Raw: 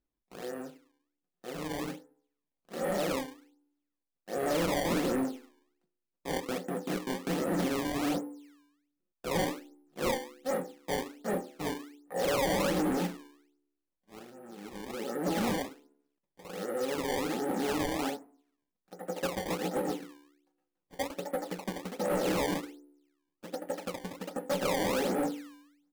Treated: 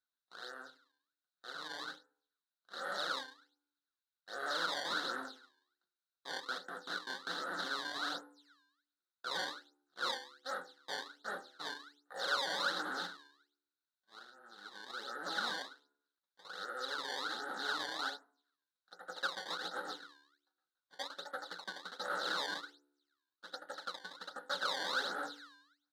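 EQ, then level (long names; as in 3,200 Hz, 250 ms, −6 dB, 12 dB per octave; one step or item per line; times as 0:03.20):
pair of resonant band-passes 2,400 Hz, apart 1.4 octaves
+9.0 dB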